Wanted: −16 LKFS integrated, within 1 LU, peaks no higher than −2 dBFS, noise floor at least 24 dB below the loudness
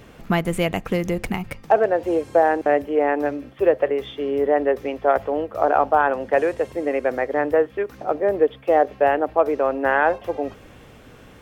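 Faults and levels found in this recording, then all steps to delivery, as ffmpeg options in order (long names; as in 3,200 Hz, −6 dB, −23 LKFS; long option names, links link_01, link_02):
integrated loudness −21.0 LKFS; sample peak −3.5 dBFS; target loudness −16.0 LKFS
→ -af "volume=5dB,alimiter=limit=-2dB:level=0:latency=1"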